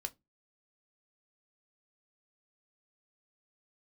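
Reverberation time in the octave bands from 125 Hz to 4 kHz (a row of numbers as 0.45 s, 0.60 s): 0.35 s, 0.30 s, 0.20 s, 0.15 s, 0.15 s, 0.15 s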